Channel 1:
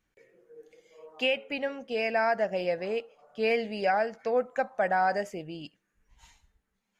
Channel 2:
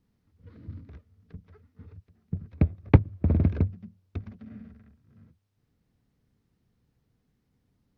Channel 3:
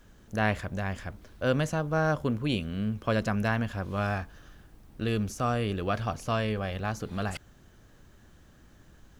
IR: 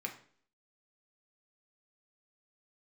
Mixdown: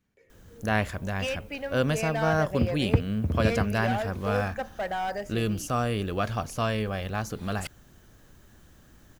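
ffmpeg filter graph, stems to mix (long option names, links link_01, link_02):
-filter_complex "[0:a]asoftclip=type=hard:threshold=-23dB,volume=-3dB[link_01];[1:a]volume=-5.5dB[link_02];[2:a]highshelf=frequency=9000:gain=9.5,adelay=300,volume=1dB[link_03];[link_01][link_02][link_03]amix=inputs=3:normalize=0"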